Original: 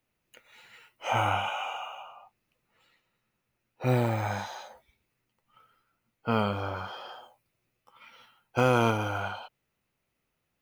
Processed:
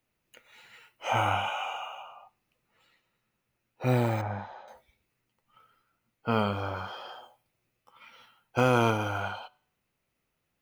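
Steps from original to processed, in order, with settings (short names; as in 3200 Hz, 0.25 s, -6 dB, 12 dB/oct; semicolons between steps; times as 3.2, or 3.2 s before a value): 4.21–4.68 tape spacing loss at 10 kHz 44 dB; reverb RT60 0.55 s, pre-delay 8 ms, DRR 19 dB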